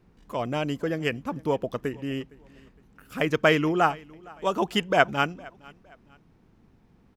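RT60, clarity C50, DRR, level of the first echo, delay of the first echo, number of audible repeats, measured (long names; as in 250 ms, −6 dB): no reverb audible, no reverb audible, no reverb audible, −24.0 dB, 461 ms, 2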